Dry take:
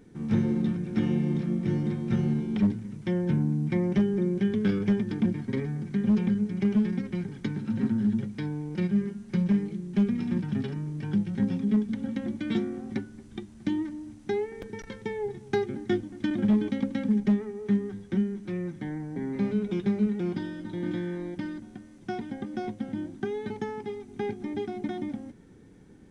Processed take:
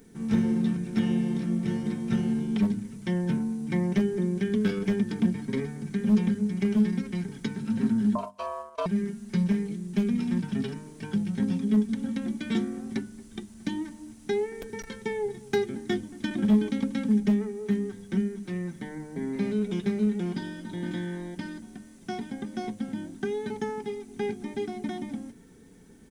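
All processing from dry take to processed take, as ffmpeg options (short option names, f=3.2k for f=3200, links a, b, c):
-filter_complex "[0:a]asettb=1/sr,asplit=3[a][b][c];[a]atrim=end=8.154[d];[b]atrim=start=8.15:end=8.86,asetpts=PTS-STARTPTS,afade=t=in:d=0.004:c=qsin,afade=t=out:st=0.706:d=0.004:c=qsin,agate=range=-17dB:threshold=-34dB:ratio=16:release=100:detection=peak,aeval=exprs='val(0)*sin(2*PI*820*n/s)':c=same[e];[c]atrim=start=8.856[f];[d][e]acrossfade=d=0.004:c1=hsin:c2=qsin[g];[g][f]acrossfade=d=0.004:c1=qsin:c2=hsin,aemphasis=mode=production:type=50fm,bandreject=f=50:t=h:w=6,bandreject=f=100:t=h:w=6,bandreject=f=150:t=h:w=6,bandreject=f=200:t=h:w=6,bandreject=f=250:t=h:w=6,bandreject=f=300:t=h:w=6,aecho=1:1:4.5:0.37"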